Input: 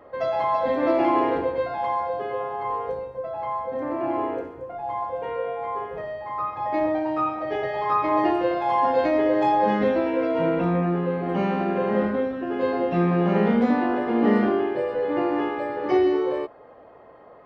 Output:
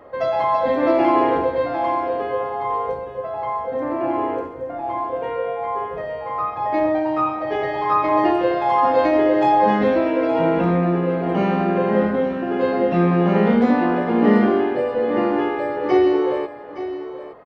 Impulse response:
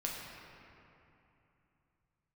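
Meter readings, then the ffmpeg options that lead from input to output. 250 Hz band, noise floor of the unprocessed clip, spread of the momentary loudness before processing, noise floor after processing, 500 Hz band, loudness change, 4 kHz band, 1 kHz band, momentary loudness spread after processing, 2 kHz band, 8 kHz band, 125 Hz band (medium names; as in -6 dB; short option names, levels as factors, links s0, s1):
+4.5 dB, -48 dBFS, 9 LU, -33 dBFS, +4.0 dB, +4.0 dB, +4.0 dB, +4.5 dB, 10 LU, +4.0 dB, no reading, +4.5 dB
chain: -af "aecho=1:1:867:0.237,volume=1.58"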